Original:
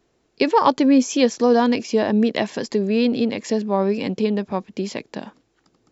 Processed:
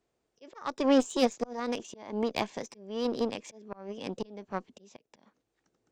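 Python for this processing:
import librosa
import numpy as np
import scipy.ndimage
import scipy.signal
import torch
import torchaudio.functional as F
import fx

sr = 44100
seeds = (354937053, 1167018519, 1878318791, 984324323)

y = fx.auto_swell(x, sr, attack_ms=378.0)
y = fx.cheby_harmonics(y, sr, harmonics=(2, 7), levels_db=(-18, -24), full_scale_db=-5.0)
y = fx.formant_shift(y, sr, semitones=3)
y = y * 10.0 ** (-8.5 / 20.0)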